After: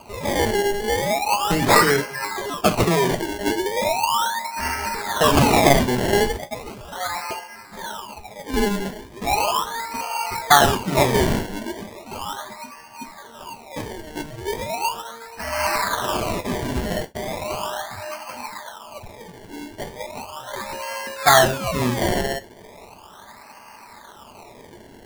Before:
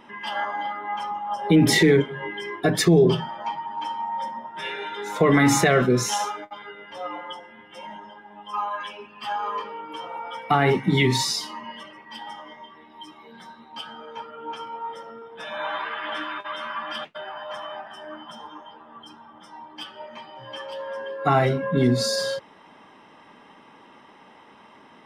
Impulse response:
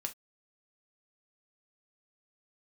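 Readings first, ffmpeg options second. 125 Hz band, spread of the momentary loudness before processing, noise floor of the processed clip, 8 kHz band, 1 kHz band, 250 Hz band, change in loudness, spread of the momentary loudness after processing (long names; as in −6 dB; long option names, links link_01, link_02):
−0.5 dB, 22 LU, −45 dBFS, +5.0 dB, +6.0 dB, −1.0 dB, +2.5 dB, 21 LU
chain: -filter_complex "[0:a]lowshelf=frequency=540:width_type=q:width=1.5:gain=-9,acrusher=samples=24:mix=1:aa=0.000001:lfo=1:lforange=24:lforate=0.37,asplit=2[link_01][link_02];[1:a]atrim=start_sample=2205[link_03];[link_02][link_03]afir=irnorm=-1:irlink=0,volume=4dB[link_04];[link_01][link_04]amix=inputs=2:normalize=0,volume=-1.5dB"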